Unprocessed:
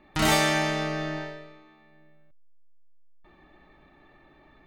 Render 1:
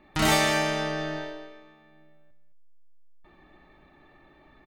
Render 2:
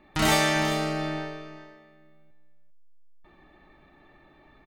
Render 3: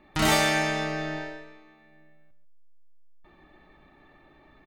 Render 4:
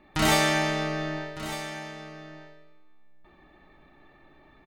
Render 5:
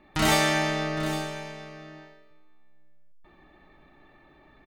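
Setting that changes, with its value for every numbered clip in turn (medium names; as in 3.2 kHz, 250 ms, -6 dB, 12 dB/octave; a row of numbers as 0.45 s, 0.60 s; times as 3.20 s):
delay, time: 216 ms, 398 ms, 139 ms, 1206 ms, 811 ms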